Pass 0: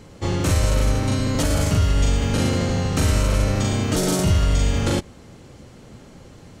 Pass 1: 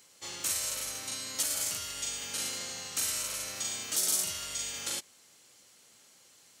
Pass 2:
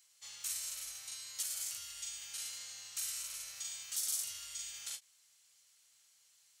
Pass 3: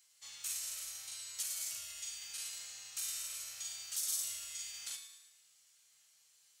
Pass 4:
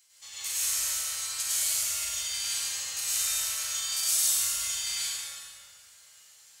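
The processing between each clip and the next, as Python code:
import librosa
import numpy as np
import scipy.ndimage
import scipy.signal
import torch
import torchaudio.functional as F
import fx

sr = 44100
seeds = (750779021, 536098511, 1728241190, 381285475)

y1 = np.diff(x, prepend=0.0)
y2 = fx.tone_stack(y1, sr, knobs='10-0-10')
y2 = fx.end_taper(y2, sr, db_per_s=360.0)
y2 = y2 * 10.0 ** (-7.0 / 20.0)
y3 = fx.comb_fb(y2, sr, f0_hz=160.0, decay_s=1.0, harmonics='all', damping=0.0, mix_pct=80)
y3 = fx.echo_feedback(y3, sr, ms=111, feedback_pct=51, wet_db=-13.0)
y3 = y3 * 10.0 ** (11.5 / 20.0)
y4 = fx.rev_plate(y3, sr, seeds[0], rt60_s=2.6, hf_ratio=0.55, predelay_ms=85, drr_db=-9.5)
y4 = y4 * 10.0 ** (4.5 / 20.0)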